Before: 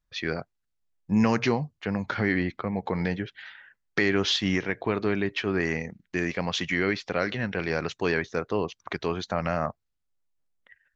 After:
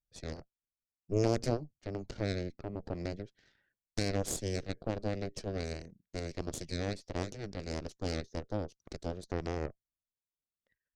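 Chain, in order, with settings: Chebyshev shaper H 2 -10 dB, 3 -8 dB, 4 -11 dB, 7 -43 dB, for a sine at -9 dBFS; high-order bell 1.7 kHz -14 dB 2.4 oct

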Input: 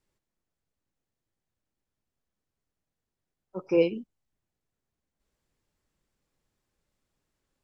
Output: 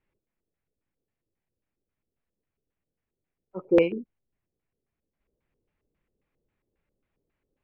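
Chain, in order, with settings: treble shelf 2.1 kHz -7 dB; LFO low-pass square 3.7 Hz 450–2400 Hz

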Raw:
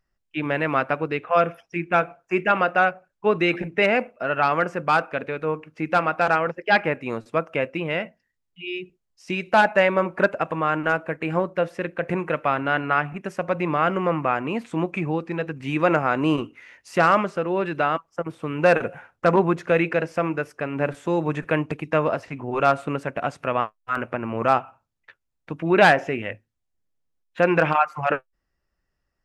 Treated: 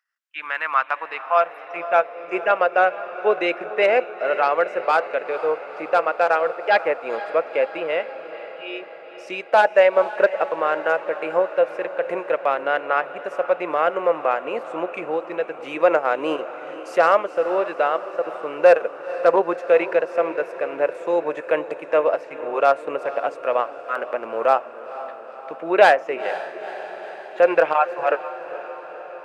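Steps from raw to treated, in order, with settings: transient shaper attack -1 dB, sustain -6 dB; echo that smears into a reverb 479 ms, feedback 66%, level -14 dB; high-pass sweep 1.5 kHz -> 510 Hz, 0.11–2.32 s; trim -1.5 dB

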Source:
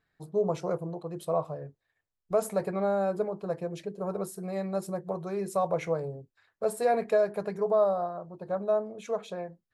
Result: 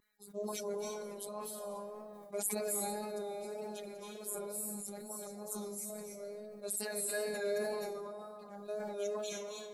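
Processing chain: coarse spectral quantiser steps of 30 dB; pre-emphasis filter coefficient 0.9; 4.30–4.86 s: time-frequency box 280–6800 Hz -17 dB; 5.27–5.90 s: FFT filter 230 Hz 0 dB, 1.1 kHz -22 dB, 2.6 kHz -19 dB, 6.9 kHz +1 dB; 7.63–8.19 s: level held to a coarse grid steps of 18 dB; tape echo 204 ms, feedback 83%, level -20 dB, low-pass 2.4 kHz; robot voice 207 Hz; reverberation RT60 1.2 s, pre-delay 250 ms, DRR -2 dB; wow and flutter 38 cents; decay stretcher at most 20 dB/s; trim +4.5 dB

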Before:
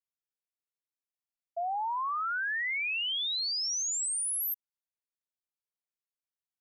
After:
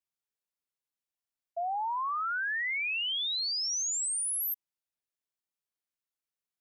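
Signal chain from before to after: 3.72–4.20 s: peaking EQ 1.3 kHz +14.5 dB 0.8 oct

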